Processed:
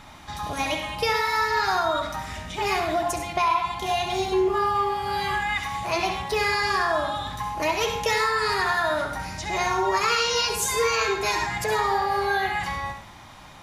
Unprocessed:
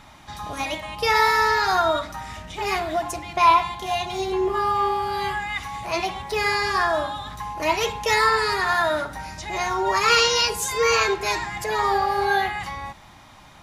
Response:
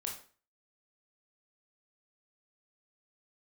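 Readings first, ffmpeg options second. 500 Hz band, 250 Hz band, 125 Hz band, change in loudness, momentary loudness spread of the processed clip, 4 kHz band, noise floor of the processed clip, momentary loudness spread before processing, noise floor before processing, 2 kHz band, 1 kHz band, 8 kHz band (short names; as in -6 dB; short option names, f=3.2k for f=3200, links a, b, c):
-1.5 dB, 0.0 dB, +0.5 dB, -2.5 dB, 8 LU, -2.5 dB, -45 dBFS, 13 LU, -48 dBFS, -2.0 dB, -2.5 dB, -1.0 dB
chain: -filter_complex "[0:a]acompressor=threshold=-22dB:ratio=6,asplit=2[a][b];[1:a]atrim=start_sample=2205,asetrate=48510,aresample=44100,adelay=67[c];[b][c]afir=irnorm=-1:irlink=0,volume=-5dB[d];[a][d]amix=inputs=2:normalize=0,volume=1.5dB"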